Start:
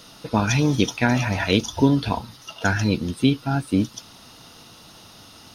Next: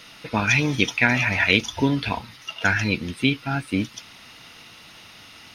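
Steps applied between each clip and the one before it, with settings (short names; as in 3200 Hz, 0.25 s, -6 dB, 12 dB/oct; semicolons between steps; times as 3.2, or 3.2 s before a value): bell 2200 Hz +15 dB 1 oct; gain -4 dB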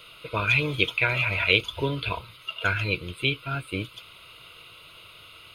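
fixed phaser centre 1200 Hz, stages 8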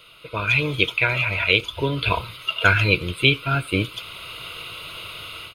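AGC gain up to 13.5 dB; speakerphone echo 90 ms, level -25 dB; gain -1 dB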